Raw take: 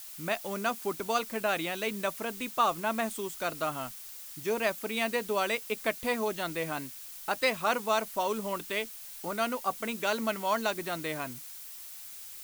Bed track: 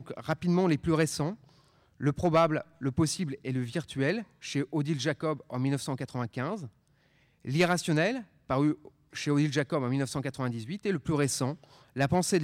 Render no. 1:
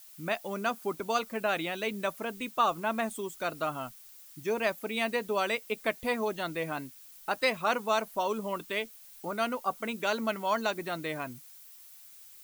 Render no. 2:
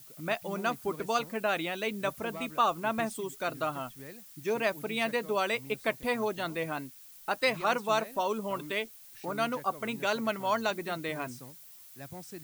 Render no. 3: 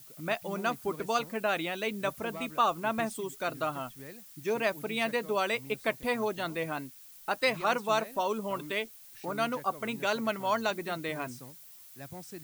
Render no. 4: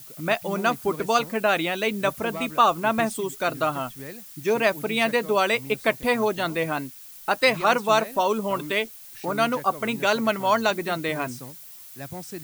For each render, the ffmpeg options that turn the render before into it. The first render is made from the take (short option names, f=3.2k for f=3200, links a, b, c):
-af "afftdn=nr=9:nf=-45"
-filter_complex "[1:a]volume=-19dB[a];[0:a][a]amix=inputs=2:normalize=0"
-af anull
-af "volume=8dB"